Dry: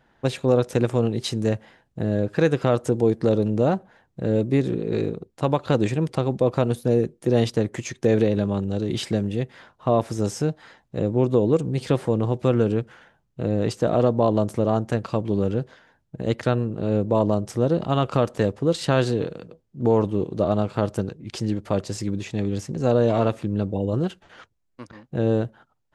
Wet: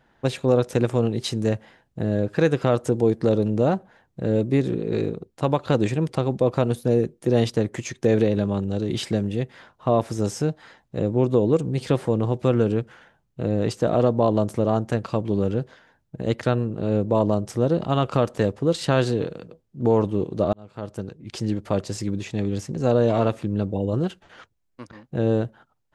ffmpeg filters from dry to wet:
ffmpeg -i in.wav -filter_complex "[0:a]asplit=2[link_01][link_02];[link_01]atrim=end=20.53,asetpts=PTS-STARTPTS,afade=type=out:start_time=20.526:duration=0.004:curve=hsin[link_03];[link_02]atrim=start=20.53,asetpts=PTS-STARTPTS,afade=type=in:duration=0.95[link_04];[link_03][link_04]concat=n=2:v=0:a=1" out.wav

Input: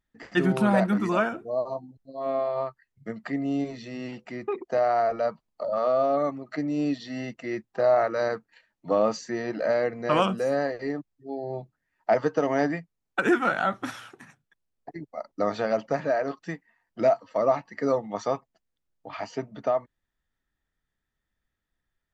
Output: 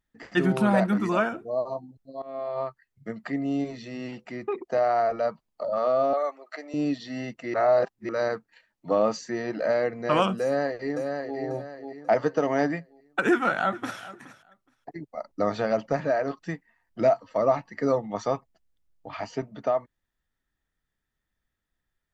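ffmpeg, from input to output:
ffmpeg -i in.wav -filter_complex "[0:a]asettb=1/sr,asplit=3[link_01][link_02][link_03];[link_01]atrim=end=6.134[link_04];[link_02]atrim=start=6.13:end=6.74,asetpts=PTS-STARTPTS,afade=type=in:duration=0.004:curve=qsin,afade=type=out:start_time=0.606:duration=0.004:curve=qsin,highpass=frequency=480:width=0.5412,highpass=frequency=480:width=1.3066[link_05];[link_03]atrim=start=6.736[link_06];[link_04][link_05]acrossfade=duration=0.004:curve1=hsin:curve2=qsin[link_07];[link_07][link_06]acrossfade=duration=0.004:curve1=qsin:curve2=hsin,asplit=2[link_08][link_09];[link_09]afade=type=in:start_time=10.42:duration=0.01,afade=type=out:start_time=11.38:duration=0.01,aecho=0:1:540|1080|1620|2160:0.562341|0.196819|0.0688868|0.0241104[link_10];[link_08][link_10]amix=inputs=2:normalize=0,asplit=2[link_11][link_12];[link_12]afade=type=in:start_time=13.3:duration=0.01,afade=type=out:start_time=14:duration=0.01,aecho=0:1:420|840:0.133352|0.0200028[link_13];[link_11][link_13]amix=inputs=2:normalize=0,asettb=1/sr,asplit=3[link_14][link_15][link_16];[link_14]atrim=end=15.144[link_17];[link_15]atrim=start=15.14:end=19.42,asetpts=PTS-STARTPTS,afade=type=in:duration=0.004:curve=qsin,afade=type=out:start_time=4.276:duration=0.004:curve=qsin,lowshelf=frequency=91:gain=12[link_18];[link_16]atrim=start=19.416[link_19];[link_17][link_18]acrossfade=duration=0.004:curve1=hsin:curve2=qsin[link_20];[link_20][link_19]acrossfade=duration=0.004:curve1=qsin:curve2=hsin,asplit=4[link_21][link_22][link_23][link_24];[link_21]atrim=end=2.22,asetpts=PTS-STARTPTS,afade=type=out:start_time=2.216:duration=0.004:curve=hsin:silence=0.125893[link_25];[link_22]atrim=start=2.22:end=7.542,asetpts=PTS-STARTPTS,afade=type=in:duration=0.44:silence=0.125893[link_26];[link_23]atrim=start=7.538:end=8.092,asetpts=PTS-STARTPTS,areverse[link_27];[link_24]atrim=start=8.088[link_28];[link_25][link_26]concat=n=2:v=0:a=1[link_29];[link_29][link_27]acrossfade=duration=0.004:curve1=hsin:curve2=hsin[link_30];[link_30][link_28]acrossfade=duration=0.004:curve1=hsin:curve2=hsin" out.wav

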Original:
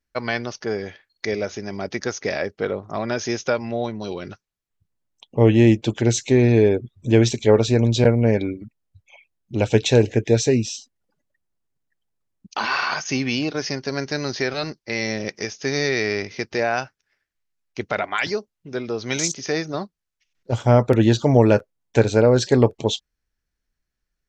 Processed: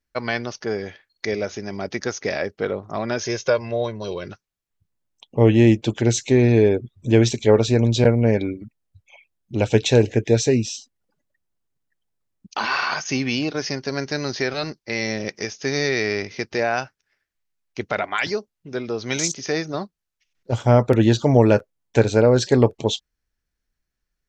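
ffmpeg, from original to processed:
ffmpeg -i in.wav -filter_complex "[0:a]asettb=1/sr,asplit=3[link_01][link_02][link_03];[link_01]atrim=end=3.224[link_04];[link_02]atrim=start=3.22:end=4.27,asetpts=PTS-STARTPTS,afade=type=in:duration=0.004:curve=qsin,afade=type=out:start_time=1.046:duration=0.004:curve=qsin,aecho=1:1:1.9:0.56,atrim=end_sample=46305[link_05];[link_03]atrim=start=4.266[link_06];[link_04][link_05]acrossfade=duration=0.004:curve1=hsin:curve2=qsin[link_07];[link_07][link_06]acrossfade=duration=0.004:curve1=qsin:curve2=hsin" out.wav

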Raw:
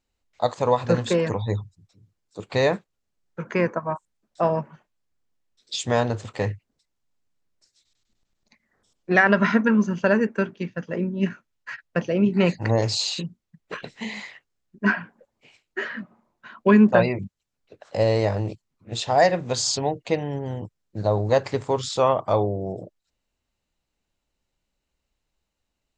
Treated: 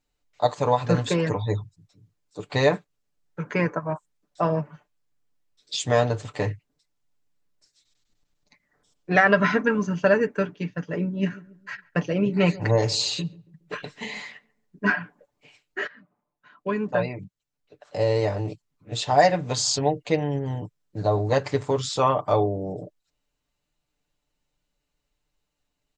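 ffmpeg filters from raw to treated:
ffmpeg -i in.wav -filter_complex "[0:a]asplit=3[link_01][link_02][link_03];[link_01]afade=type=out:start_time=11.28:duration=0.02[link_04];[link_02]asplit=2[link_05][link_06];[link_06]adelay=139,lowpass=frequency=840:poles=1,volume=-18.5dB,asplit=2[link_07][link_08];[link_08]adelay=139,lowpass=frequency=840:poles=1,volume=0.44,asplit=2[link_09][link_10];[link_10]adelay=139,lowpass=frequency=840:poles=1,volume=0.44,asplit=2[link_11][link_12];[link_12]adelay=139,lowpass=frequency=840:poles=1,volume=0.44[link_13];[link_05][link_07][link_09][link_11][link_13]amix=inputs=5:normalize=0,afade=type=in:start_time=11.28:duration=0.02,afade=type=out:start_time=14.85:duration=0.02[link_14];[link_03]afade=type=in:start_time=14.85:duration=0.02[link_15];[link_04][link_14][link_15]amix=inputs=3:normalize=0,asplit=2[link_16][link_17];[link_16]atrim=end=15.87,asetpts=PTS-STARTPTS,afade=type=out:start_time=15.866:duration=0.004:curve=hsin:silence=0.133352[link_18];[link_17]atrim=start=15.87,asetpts=PTS-STARTPTS,afade=type=in:duration=3.25:silence=0.133352[link_19];[link_18][link_19]concat=n=2:v=0:a=1,aecho=1:1:6.8:0.59,volume=-1dB" out.wav

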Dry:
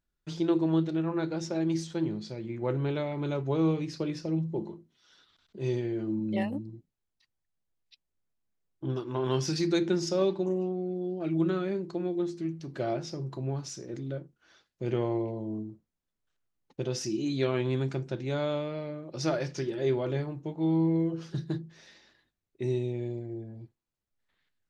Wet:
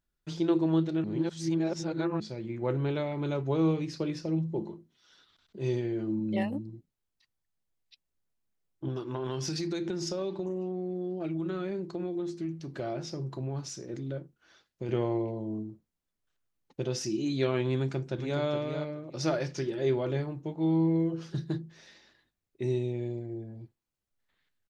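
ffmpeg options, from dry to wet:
ffmpeg -i in.wav -filter_complex "[0:a]asettb=1/sr,asplit=3[link_01][link_02][link_03];[link_01]atrim=end=8.884[link_04];[link_02]atrim=start=8.88:end=14.89,asetpts=PTS-STARTPTS,afade=type=in:duration=0.004:curve=qsin,afade=type=out:start_time=6.006:duration=0.004:curve=qsin,acompressor=threshold=-29dB:ratio=6:attack=3.2:release=140:knee=1:detection=peak[link_05];[link_03]atrim=start=14.886[link_06];[link_04][link_05]acrossfade=duration=0.004:curve1=hsin:curve2=qsin[link_07];[link_07][link_06]acrossfade=duration=0.004:curve1=qsin:curve2=hsin,asplit=2[link_08][link_09];[link_09]afade=type=in:start_time=17.76:duration=0.01,afade=type=out:start_time=18.42:duration=0.01,aecho=0:1:420|840|1260:0.446684|0.0670025|0.0100504[link_10];[link_08][link_10]amix=inputs=2:normalize=0,asplit=3[link_11][link_12][link_13];[link_11]atrim=end=1.042[link_14];[link_12]atrim=start=1.038:end=2.202,asetpts=PTS-STARTPTS,areverse[link_15];[link_13]atrim=start=2.198[link_16];[link_14][link_15]acrossfade=duration=0.004:curve1=hsin:curve2=hsin[link_17];[link_17][link_16]acrossfade=duration=0.004:curve1=hsin:curve2=hsin" out.wav

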